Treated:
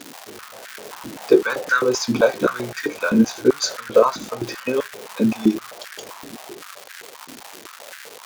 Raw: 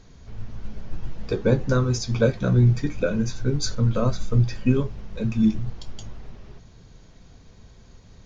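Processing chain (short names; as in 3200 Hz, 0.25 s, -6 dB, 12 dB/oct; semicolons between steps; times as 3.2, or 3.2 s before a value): crackle 370/s -30 dBFS; stepped high-pass 7.7 Hz 270–1600 Hz; gain +5.5 dB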